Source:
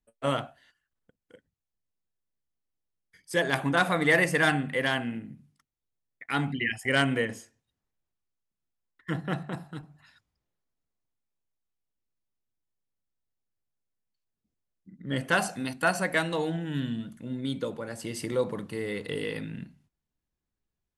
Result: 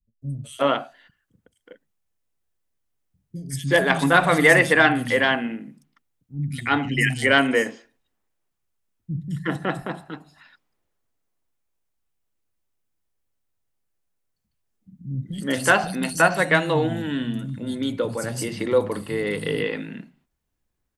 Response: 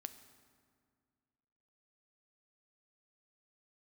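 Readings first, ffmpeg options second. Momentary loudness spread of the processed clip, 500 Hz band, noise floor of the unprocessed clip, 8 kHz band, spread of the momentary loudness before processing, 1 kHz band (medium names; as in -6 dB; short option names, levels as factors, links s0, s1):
17 LU, +8.0 dB, under -85 dBFS, +7.5 dB, 16 LU, +8.0 dB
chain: -filter_complex "[0:a]acontrast=76,acrossover=split=190|4300[s0][s1][s2];[s2]adelay=220[s3];[s1]adelay=370[s4];[s0][s4][s3]amix=inputs=3:normalize=0,volume=1.19"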